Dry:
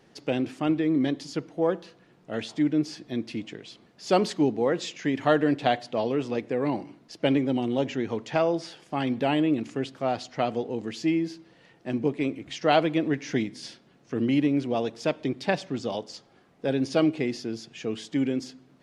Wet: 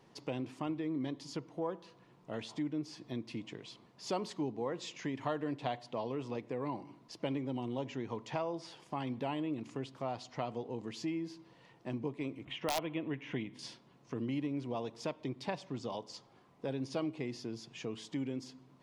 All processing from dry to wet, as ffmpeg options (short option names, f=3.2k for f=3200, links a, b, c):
-filter_complex "[0:a]asettb=1/sr,asplit=3[a][b][c];[a]atrim=end=12.454[d];[b]atrim=start=12.45:end=13.59,asetpts=PTS-STARTPTS,afade=t=in:d=0.004:c=qsin,afade=t=out:st=1.136:d=0.004:c=qsin,acrossover=split=3500[e][f];[f]acompressor=threshold=-46dB:ratio=4:attack=1:release=60[g];[e][g]amix=inputs=2:normalize=0,highshelf=f=3.8k:t=q:w=3:g=-7.5,aeval=exprs='(mod(2.66*val(0)+1,2)-1)/2.66':c=same[h];[c]atrim=start=13.586[i];[d][h]acrossfade=d=0.004:c1=hsin:c2=qsin[j];[j][i]acrossfade=d=0.004:c1=qsin:c2=hsin,equalizer=f=125:t=o:w=0.33:g=6,equalizer=f=1k:t=o:w=0.33:g=10,equalizer=f=1.6k:t=o:w=0.33:g=-4,acompressor=threshold=-34dB:ratio=2,volume=-5.5dB"